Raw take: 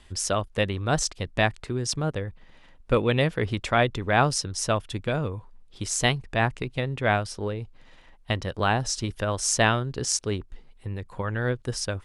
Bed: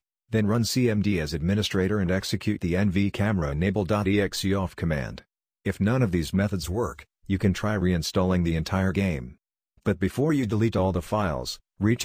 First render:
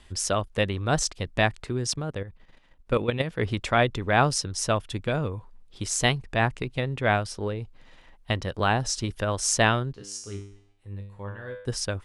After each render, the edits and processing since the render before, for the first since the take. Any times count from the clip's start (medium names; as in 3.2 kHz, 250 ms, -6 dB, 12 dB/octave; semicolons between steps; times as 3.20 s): 1.93–3.39 s: level held to a coarse grid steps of 10 dB; 9.93–11.66 s: feedback comb 100 Hz, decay 0.61 s, mix 90%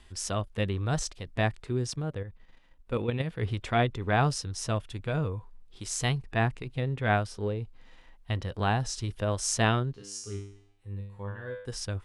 band-stop 580 Hz, Q 15; harmonic-percussive split percussive -9 dB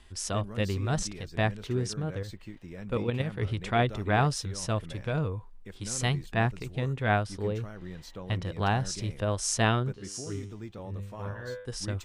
add bed -18.5 dB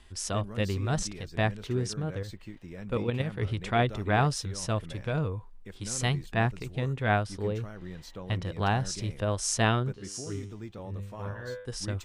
no audible change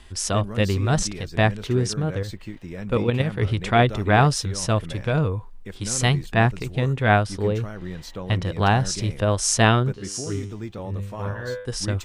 trim +8 dB